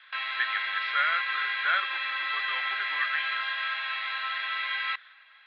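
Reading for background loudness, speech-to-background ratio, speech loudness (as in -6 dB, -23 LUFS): -29.0 LUFS, -2.5 dB, -31.5 LUFS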